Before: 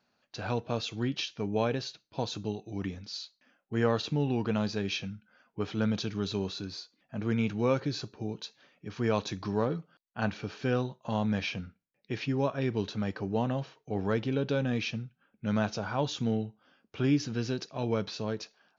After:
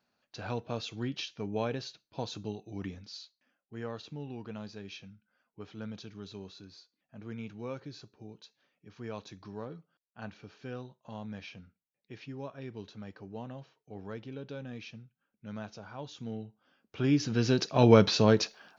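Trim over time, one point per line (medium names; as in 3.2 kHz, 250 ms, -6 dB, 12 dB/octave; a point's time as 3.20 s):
2.96 s -4 dB
3.76 s -12.5 dB
16.08 s -12.5 dB
17.09 s -0.5 dB
17.83 s +11 dB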